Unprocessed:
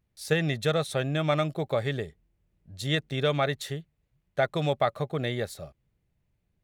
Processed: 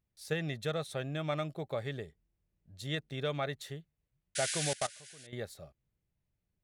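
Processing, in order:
0:04.35–0:05.27: sound drawn into the spectrogram noise 1,400–11,000 Hz −27 dBFS
0:04.73–0:05.33: output level in coarse steps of 22 dB
level −9 dB

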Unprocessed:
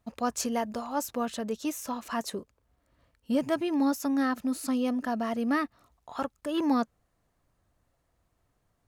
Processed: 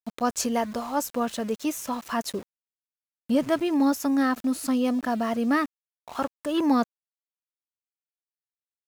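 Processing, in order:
centre clipping without the shift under −44.5 dBFS
level +4 dB

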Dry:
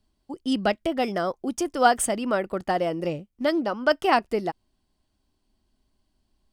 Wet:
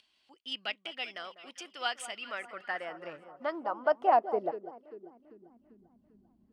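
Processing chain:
delay that swaps between a low-pass and a high-pass 197 ms, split 1,300 Hz, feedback 61%, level −12 dB
upward compression, threshold −39 dBFS
band-pass filter sweep 2,800 Hz → 210 Hz, 0:02.11–0:05.86

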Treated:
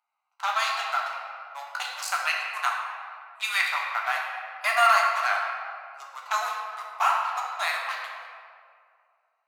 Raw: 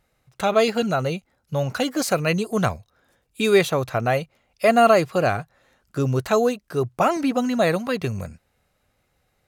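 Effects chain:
adaptive Wiener filter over 25 samples
Butterworth high-pass 860 Hz 48 dB per octave
convolution reverb RT60 2.3 s, pre-delay 7 ms, DRR −2.5 dB

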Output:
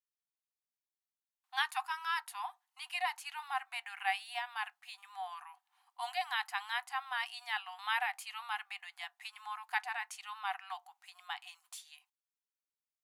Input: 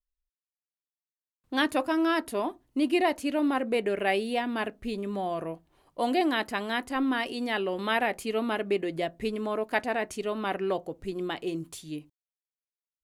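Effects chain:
linear-phase brick-wall high-pass 720 Hz
level −5 dB

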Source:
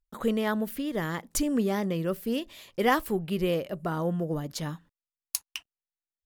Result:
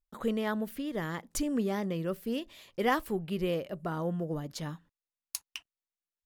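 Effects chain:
high-shelf EQ 8,400 Hz −4.5 dB
level −4 dB

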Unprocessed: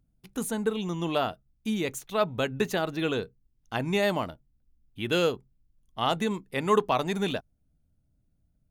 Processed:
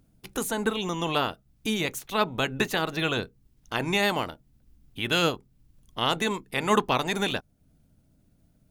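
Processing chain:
ceiling on every frequency bin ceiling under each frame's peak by 12 dB
in parallel at +1 dB: downward compressor, threshold −43 dBFS, peak gain reduction 24 dB

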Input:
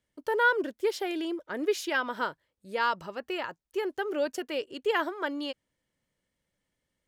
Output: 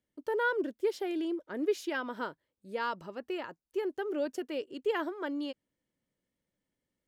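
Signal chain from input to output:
parametric band 280 Hz +8 dB 1.9 octaves
level −8 dB

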